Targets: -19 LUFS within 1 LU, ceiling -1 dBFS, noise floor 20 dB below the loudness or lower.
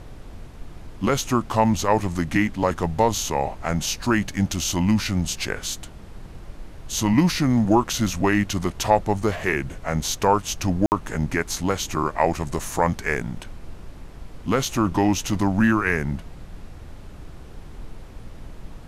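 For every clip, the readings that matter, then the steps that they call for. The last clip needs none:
dropouts 1; longest dropout 59 ms; noise floor -41 dBFS; noise floor target -43 dBFS; loudness -23.0 LUFS; peak -4.5 dBFS; loudness target -19.0 LUFS
-> interpolate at 10.86, 59 ms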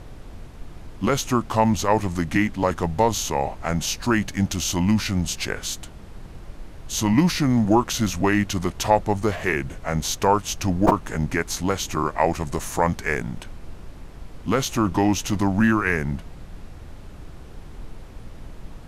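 dropouts 0; noise floor -41 dBFS; noise floor target -43 dBFS
-> noise print and reduce 6 dB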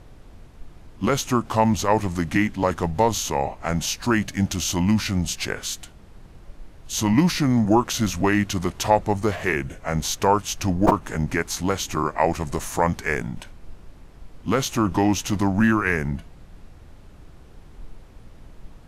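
noise floor -46 dBFS; loudness -22.5 LUFS; peak -3.0 dBFS; loudness target -19.0 LUFS
-> gain +3.5 dB; limiter -1 dBFS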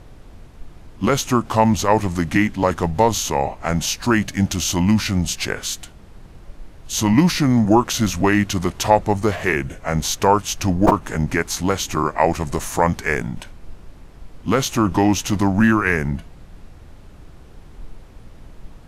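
loudness -19.0 LUFS; peak -1.0 dBFS; noise floor -43 dBFS

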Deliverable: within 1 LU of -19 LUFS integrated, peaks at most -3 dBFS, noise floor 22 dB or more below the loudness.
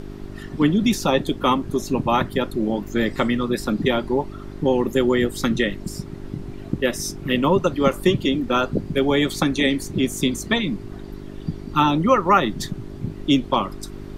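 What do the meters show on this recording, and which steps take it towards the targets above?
hum 50 Hz; harmonics up to 400 Hz; hum level -35 dBFS; noise floor -36 dBFS; noise floor target -44 dBFS; loudness -21.5 LUFS; peak -3.0 dBFS; loudness target -19.0 LUFS
-> de-hum 50 Hz, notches 8; noise print and reduce 8 dB; gain +2.5 dB; limiter -3 dBFS

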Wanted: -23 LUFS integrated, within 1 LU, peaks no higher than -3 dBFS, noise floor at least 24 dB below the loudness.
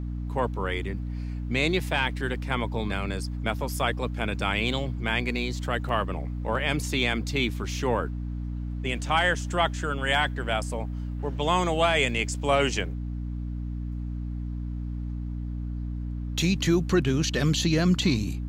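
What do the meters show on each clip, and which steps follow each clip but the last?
dropouts 1; longest dropout 1.2 ms; hum 60 Hz; harmonics up to 300 Hz; hum level -29 dBFS; loudness -27.5 LUFS; peak -10.5 dBFS; loudness target -23.0 LUFS
-> interpolate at 5.89, 1.2 ms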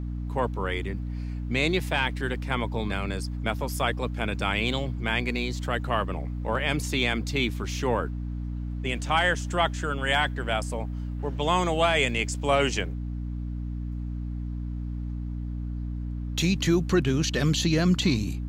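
dropouts 0; hum 60 Hz; harmonics up to 300 Hz; hum level -29 dBFS
-> de-hum 60 Hz, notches 5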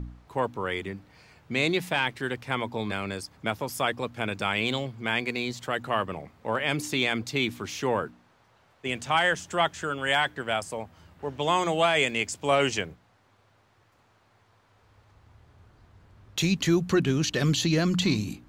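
hum none; loudness -27.5 LUFS; peak -11.5 dBFS; loudness target -23.0 LUFS
-> gain +4.5 dB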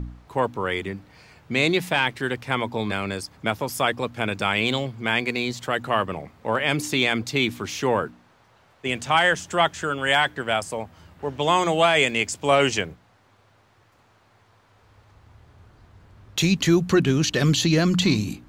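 loudness -23.0 LUFS; peak -7.0 dBFS; noise floor -59 dBFS

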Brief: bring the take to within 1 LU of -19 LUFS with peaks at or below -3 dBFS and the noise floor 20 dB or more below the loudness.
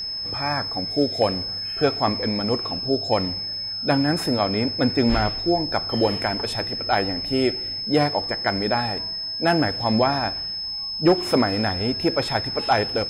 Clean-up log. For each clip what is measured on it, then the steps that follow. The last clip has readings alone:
ticks 32/s; steady tone 5200 Hz; tone level -27 dBFS; loudness -22.5 LUFS; peak -8.5 dBFS; loudness target -19.0 LUFS
-> de-click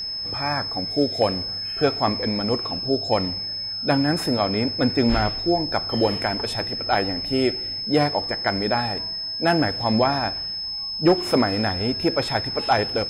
ticks 0.31/s; steady tone 5200 Hz; tone level -27 dBFS
-> notch 5200 Hz, Q 30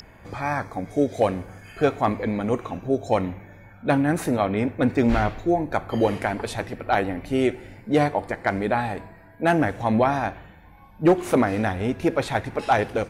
steady tone none; loudness -24.0 LUFS; peak -9.0 dBFS; loudness target -19.0 LUFS
-> gain +5 dB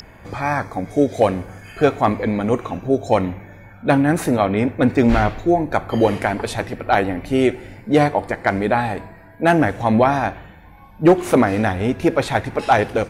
loudness -19.0 LUFS; peak -4.0 dBFS; noise floor -44 dBFS

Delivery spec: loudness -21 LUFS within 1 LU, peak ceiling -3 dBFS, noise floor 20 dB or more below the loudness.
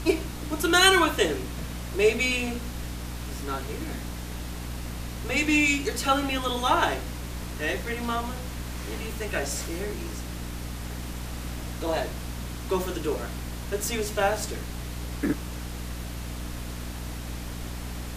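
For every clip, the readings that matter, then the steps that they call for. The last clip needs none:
hum 60 Hz; harmonics up to 300 Hz; hum level -33 dBFS; noise floor -36 dBFS; noise floor target -48 dBFS; loudness -28.0 LUFS; peak -4.5 dBFS; loudness target -21.0 LUFS
-> notches 60/120/180/240/300 Hz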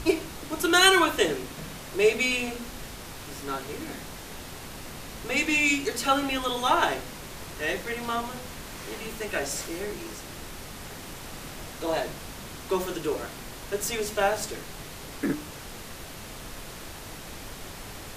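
hum none; noise floor -41 dBFS; noise floor target -47 dBFS
-> noise print and reduce 6 dB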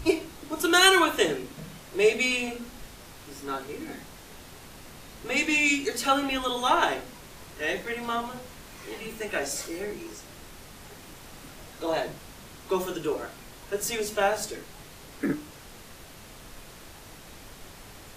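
noise floor -47 dBFS; loudness -26.5 LUFS; peak -4.5 dBFS; loudness target -21.0 LUFS
-> gain +5.5 dB; limiter -3 dBFS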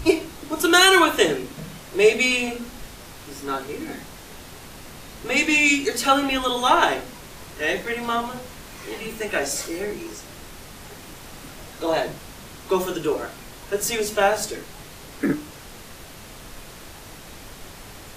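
loudness -21.5 LUFS; peak -3.0 dBFS; noise floor -42 dBFS

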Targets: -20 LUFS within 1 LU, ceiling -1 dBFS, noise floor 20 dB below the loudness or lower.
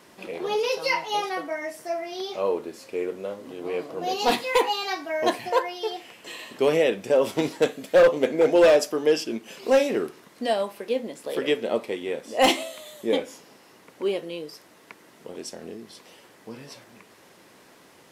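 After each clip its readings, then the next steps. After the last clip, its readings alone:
clipped 0.4%; flat tops at -11.5 dBFS; loudness -24.5 LUFS; peak -11.5 dBFS; loudness target -20.0 LUFS
-> clip repair -11.5 dBFS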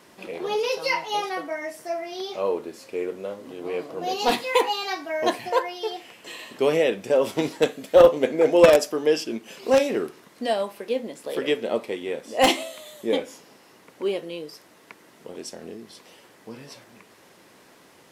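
clipped 0.0%; loudness -23.5 LUFS; peak -2.5 dBFS; loudness target -20.0 LUFS
-> gain +3.5 dB; limiter -1 dBFS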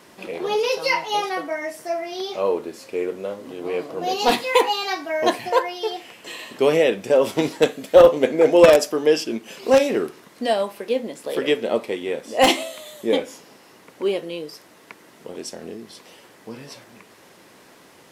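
loudness -20.5 LUFS; peak -1.0 dBFS; noise floor -50 dBFS

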